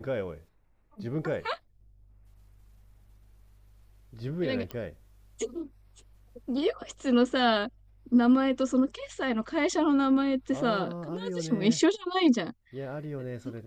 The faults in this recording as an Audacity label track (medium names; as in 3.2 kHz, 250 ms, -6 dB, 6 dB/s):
4.710000	4.710000	pop -21 dBFS